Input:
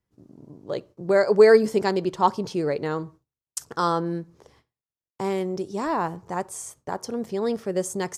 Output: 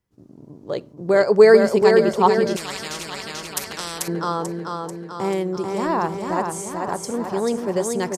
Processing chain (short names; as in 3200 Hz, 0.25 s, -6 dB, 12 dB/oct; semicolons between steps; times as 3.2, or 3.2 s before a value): on a send: feedback echo 0.439 s, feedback 58%, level -4.5 dB; 2.56–4.08 on the sum: spectral compressor 4:1; gain +3 dB